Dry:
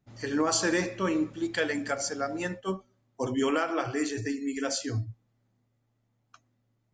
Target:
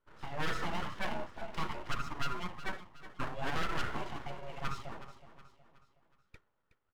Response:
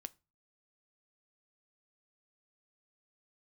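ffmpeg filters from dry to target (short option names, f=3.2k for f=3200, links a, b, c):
-filter_complex "[0:a]lowpass=f=3.3k:p=1,equalizer=f=310:w=0.5:g=5.5,asplit=2[a][b];[b]acompressor=threshold=-33dB:ratio=6,volume=-2dB[c];[a][c]amix=inputs=2:normalize=0,asplit=3[d][e][f];[d]bandpass=f=730:t=q:w=8,volume=0dB[g];[e]bandpass=f=1.09k:t=q:w=8,volume=-6dB[h];[f]bandpass=f=2.44k:t=q:w=8,volume=-9dB[i];[g][h][i]amix=inputs=3:normalize=0,asoftclip=type=hard:threshold=-30.5dB,asplit=2[j][k];[k]aecho=0:1:369|738|1107|1476:0.2|0.0878|0.0386|0.017[l];[j][l]amix=inputs=2:normalize=0,aeval=exprs='abs(val(0))':c=same,volume=5.5dB" -ar 48000 -c:a libmp3lame -b:a 128k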